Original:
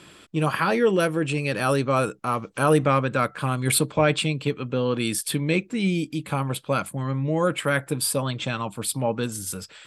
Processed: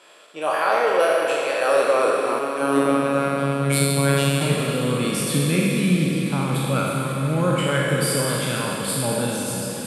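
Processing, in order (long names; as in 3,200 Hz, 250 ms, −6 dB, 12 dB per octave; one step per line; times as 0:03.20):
peak hold with a decay on every bin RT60 1.30 s
four-comb reverb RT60 3 s, combs from 33 ms, DRR 2 dB
0:02.39–0:04.41: phases set to zero 139 Hz
high-pass filter sweep 600 Hz → 150 Hz, 0:01.55–0:03.66
on a send: feedback delay with all-pass diffusion 510 ms, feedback 60%, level −11.5 dB
on the sum: level −4.5 dB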